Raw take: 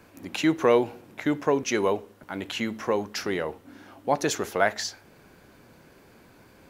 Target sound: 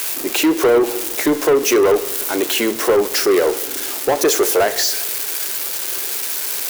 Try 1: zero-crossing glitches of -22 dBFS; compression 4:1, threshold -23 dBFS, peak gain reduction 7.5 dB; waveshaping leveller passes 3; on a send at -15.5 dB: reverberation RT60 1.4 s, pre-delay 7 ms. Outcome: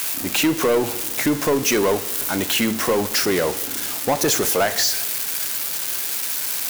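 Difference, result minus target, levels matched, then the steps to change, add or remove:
500 Hz band -3.5 dB
add after compression: resonant high-pass 380 Hz, resonance Q 3.4

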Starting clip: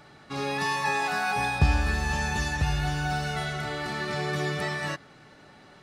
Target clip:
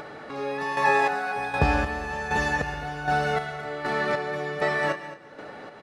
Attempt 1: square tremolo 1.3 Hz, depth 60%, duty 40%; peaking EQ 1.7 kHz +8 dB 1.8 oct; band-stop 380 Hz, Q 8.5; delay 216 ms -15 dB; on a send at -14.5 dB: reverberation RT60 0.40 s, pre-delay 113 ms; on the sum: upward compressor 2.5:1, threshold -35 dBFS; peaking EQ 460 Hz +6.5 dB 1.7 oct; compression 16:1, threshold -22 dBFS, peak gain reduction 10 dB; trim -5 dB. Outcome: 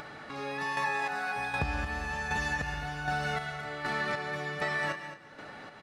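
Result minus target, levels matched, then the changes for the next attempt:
compression: peak gain reduction +10 dB; 500 Hz band -4.5 dB
change: second peaking EQ 460 Hz +16.5 dB 1.7 oct; remove: compression 16:1, threshold -22 dBFS, peak gain reduction 10 dB

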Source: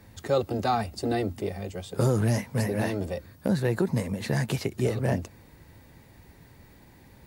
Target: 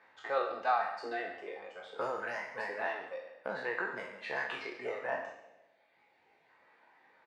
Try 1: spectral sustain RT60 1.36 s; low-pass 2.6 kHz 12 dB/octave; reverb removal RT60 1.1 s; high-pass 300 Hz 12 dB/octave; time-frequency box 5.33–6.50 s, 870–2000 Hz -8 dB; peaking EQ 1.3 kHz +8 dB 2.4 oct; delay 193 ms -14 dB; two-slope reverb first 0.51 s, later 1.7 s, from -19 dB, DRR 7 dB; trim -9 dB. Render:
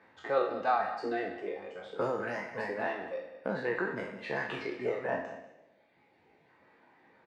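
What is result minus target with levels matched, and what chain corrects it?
echo 54 ms late; 250 Hz band +7.5 dB
spectral sustain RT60 1.36 s; low-pass 2.6 kHz 12 dB/octave; reverb removal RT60 1.1 s; high-pass 640 Hz 12 dB/octave; time-frequency box 5.33–6.50 s, 870–2000 Hz -8 dB; peaking EQ 1.3 kHz +8 dB 2.4 oct; delay 139 ms -14 dB; two-slope reverb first 0.51 s, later 1.7 s, from -19 dB, DRR 7 dB; trim -9 dB

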